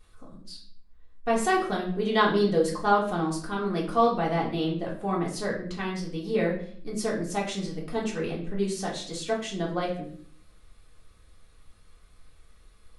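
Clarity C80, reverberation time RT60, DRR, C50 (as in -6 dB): 11.5 dB, 0.55 s, -4.5 dB, 7.0 dB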